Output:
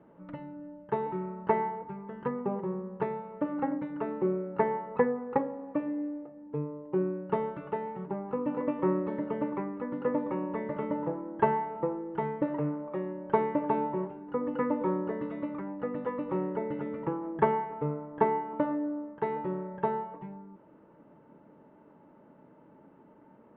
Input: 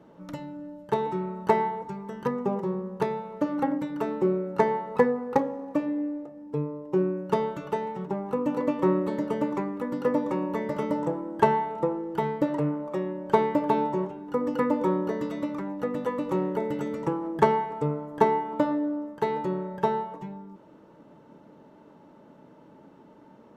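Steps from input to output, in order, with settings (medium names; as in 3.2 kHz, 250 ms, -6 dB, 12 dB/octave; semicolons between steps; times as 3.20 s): low-pass 2.5 kHz 24 dB/octave; trim -4.5 dB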